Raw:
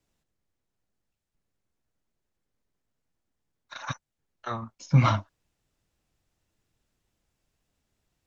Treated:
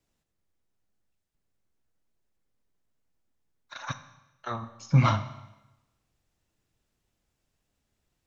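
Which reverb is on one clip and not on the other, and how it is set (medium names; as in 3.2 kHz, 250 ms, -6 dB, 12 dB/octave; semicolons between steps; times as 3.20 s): Schroeder reverb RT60 1 s, combs from 30 ms, DRR 12 dB; trim -1 dB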